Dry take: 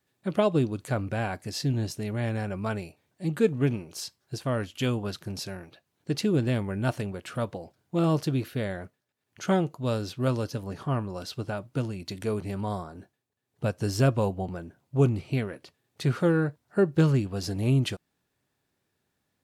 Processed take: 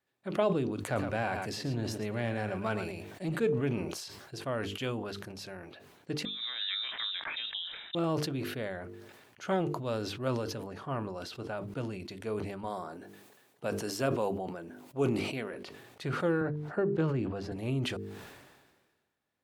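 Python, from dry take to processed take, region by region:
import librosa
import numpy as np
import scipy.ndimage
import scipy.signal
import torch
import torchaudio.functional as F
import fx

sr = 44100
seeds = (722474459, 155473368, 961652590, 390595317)

y = fx.chain(x, sr, fx.leveller(passes=1),
    fx.echo_single(ms=111, db=-11.0),
    fx.band_squash(depth_pct=40), at=(0.83, 3.4))
y = fx.chain(y, sr, fx.peak_eq(hz=2100.0, db=11.5, octaves=0.46),
    fx.over_compress(threshold_db=-31.0, ratio=-1.0),
    fx.freq_invert(carrier_hz=3800), at=(6.25, 7.95))
y = fx.chain(y, sr, fx.highpass(hz=170.0, slope=12),
    fx.high_shelf(hz=6600.0, db=8.0), at=(12.64, 15.54))
y = fx.chain(y, sr, fx.lowpass(hz=1900.0, slope=6),
    fx.band_squash(depth_pct=40), at=(16.41, 17.52))
y = fx.bass_treble(y, sr, bass_db=-7, treble_db=-7)
y = fx.hum_notches(y, sr, base_hz=50, count=9)
y = fx.sustainer(y, sr, db_per_s=40.0)
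y = y * librosa.db_to_amplitude(-4.0)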